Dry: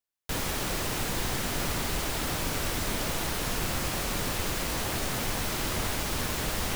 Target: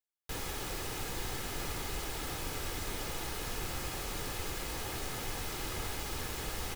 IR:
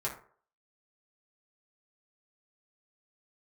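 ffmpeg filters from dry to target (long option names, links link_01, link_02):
-af "aecho=1:1:2.4:0.36,areverse,acompressor=mode=upward:threshold=-40dB:ratio=2.5,areverse,volume=-8.5dB"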